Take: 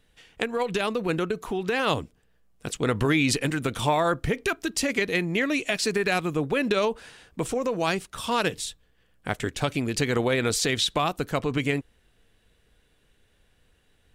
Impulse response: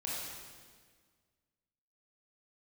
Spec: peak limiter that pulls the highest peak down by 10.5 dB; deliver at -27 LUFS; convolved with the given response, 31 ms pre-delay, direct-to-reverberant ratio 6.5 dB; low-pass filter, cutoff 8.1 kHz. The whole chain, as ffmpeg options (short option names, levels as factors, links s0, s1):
-filter_complex "[0:a]lowpass=8100,alimiter=limit=0.1:level=0:latency=1,asplit=2[s0][s1];[1:a]atrim=start_sample=2205,adelay=31[s2];[s1][s2]afir=irnorm=-1:irlink=0,volume=0.355[s3];[s0][s3]amix=inputs=2:normalize=0,volume=1.41"